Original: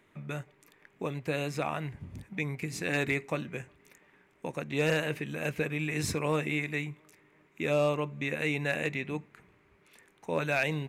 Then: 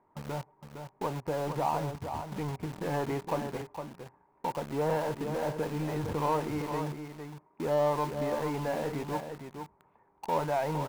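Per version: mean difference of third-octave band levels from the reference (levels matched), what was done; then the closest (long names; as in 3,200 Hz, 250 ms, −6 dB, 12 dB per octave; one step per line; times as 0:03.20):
8.0 dB: low-pass with resonance 910 Hz, resonance Q 5.8
in parallel at −6.5 dB: log-companded quantiser 2 bits
on the sum: single-tap delay 460 ms −7.5 dB
level −6.5 dB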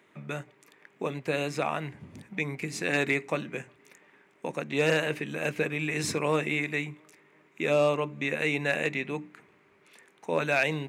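1.5 dB: high-pass filter 170 Hz 12 dB per octave
parametric band 13,000 Hz −7 dB 0.45 octaves
mains-hum notches 60/120/180/240/300 Hz
level +3.5 dB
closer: second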